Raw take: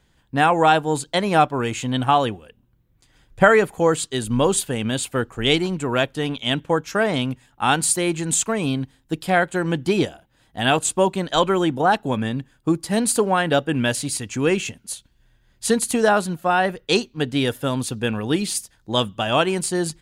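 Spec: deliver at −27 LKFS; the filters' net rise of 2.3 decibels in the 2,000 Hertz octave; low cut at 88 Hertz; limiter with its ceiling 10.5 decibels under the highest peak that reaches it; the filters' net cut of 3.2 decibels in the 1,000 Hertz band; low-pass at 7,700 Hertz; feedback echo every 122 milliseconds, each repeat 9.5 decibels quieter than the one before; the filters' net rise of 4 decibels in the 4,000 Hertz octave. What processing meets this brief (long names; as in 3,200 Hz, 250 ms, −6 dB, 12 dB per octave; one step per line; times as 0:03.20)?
high-pass filter 88 Hz
low-pass filter 7,700 Hz
parametric band 1,000 Hz −6 dB
parametric band 2,000 Hz +4.5 dB
parametric band 4,000 Hz +4 dB
brickwall limiter −10.5 dBFS
repeating echo 122 ms, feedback 33%, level −9.5 dB
level −4.5 dB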